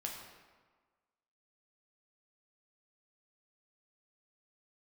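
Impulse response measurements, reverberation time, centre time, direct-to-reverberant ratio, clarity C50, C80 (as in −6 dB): 1.5 s, 53 ms, −0.5 dB, 3.5 dB, 5.0 dB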